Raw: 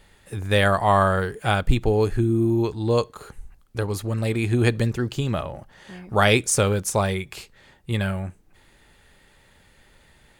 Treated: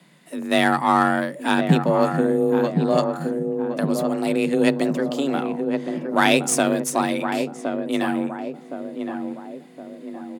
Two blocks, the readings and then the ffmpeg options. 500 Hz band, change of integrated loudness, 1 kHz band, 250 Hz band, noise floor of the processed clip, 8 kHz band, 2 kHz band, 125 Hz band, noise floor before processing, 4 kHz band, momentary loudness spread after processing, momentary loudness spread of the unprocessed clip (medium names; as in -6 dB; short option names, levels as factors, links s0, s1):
+2.0 dB, +1.0 dB, +3.0 dB, +5.5 dB, -43 dBFS, 0.0 dB, +1.5 dB, -6.0 dB, -57 dBFS, +0.5 dB, 15 LU, 16 LU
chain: -filter_complex "[0:a]asplit=2[s0][s1];[s1]adelay=1066,lowpass=f=920:p=1,volume=0.562,asplit=2[s2][s3];[s3]adelay=1066,lowpass=f=920:p=1,volume=0.53,asplit=2[s4][s5];[s5]adelay=1066,lowpass=f=920:p=1,volume=0.53,asplit=2[s6][s7];[s7]adelay=1066,lowpass=f=920:p=1,volume=0.53,asplit=2[s8][s9];[s9]adelay=1066,lowpass=f=920:p=1,volume=0.53,asplit=2[s10][s11];[s11]adelay=1066,lowpass=f=920:p=1,volume=0.53,asplit=2[s12][s13];[s13]adelay=1066,lowpass=f=920:p=1,volume=0.53[s14];[s0][s2][s4][s6][s8][s10][s12][s14]amix=inputs=8:normalize=0,aeval=exprs='0.708*(cos(1*acos(clip(val(0)/0.708,-1,1)))-cos(1*PI/2))+0.0282*(cos(8*acos(clip(val(0)/0.708,-1,1)))-cos(8*PI/2))':c=same,afreqshift=140"